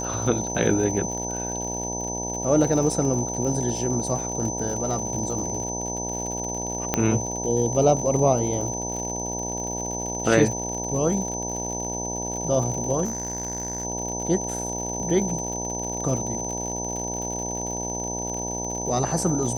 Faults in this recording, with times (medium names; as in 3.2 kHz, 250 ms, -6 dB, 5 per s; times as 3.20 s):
buzz 60 Hz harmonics 16 -32 dBFS
crackle 71 per s -31 dBFS
whine 6.1 kHz -30 dBFS
6.94 s: pop -6 dBFS
13.04–13.85 s: clipped -24 dBFS